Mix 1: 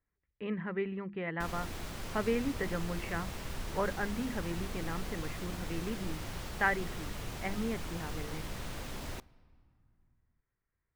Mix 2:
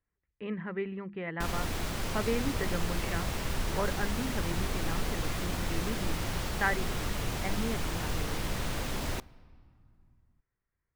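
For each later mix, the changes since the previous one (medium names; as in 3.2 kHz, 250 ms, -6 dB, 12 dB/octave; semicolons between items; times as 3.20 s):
background +7.5 dB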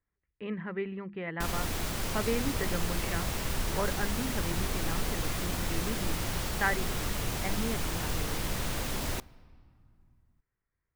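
master: add treble shelf 6.7 kHz +6.5 dB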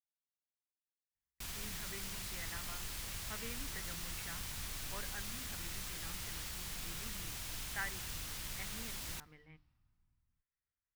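speech: entry +1.15 s; master: add amplifier tone stack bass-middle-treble 5-5-5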